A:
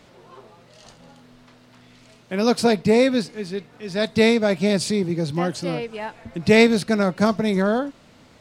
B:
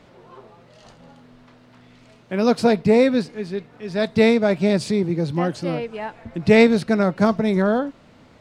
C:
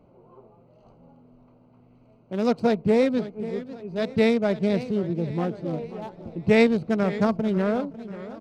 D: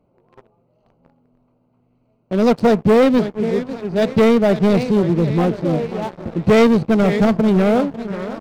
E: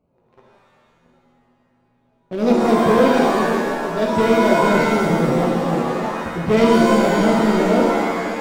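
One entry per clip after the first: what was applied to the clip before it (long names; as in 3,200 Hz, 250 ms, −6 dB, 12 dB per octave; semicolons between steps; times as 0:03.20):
high-shelf EQ 3,700 Hz −10 dB; level +1.5 dB
adaptive Wiener filter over 25 samples; single-tap delay 519 ms −23 dB; feedback echo with a swinging delay time 542 ms, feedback 46%, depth 174 cents, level −15 dB; level −4.5 dB
leveller curve on the samples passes 3
reverb with rising layers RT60 1.3 s, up +7 semitones, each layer −2 dB, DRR −0.5 dB; level −6.5 dB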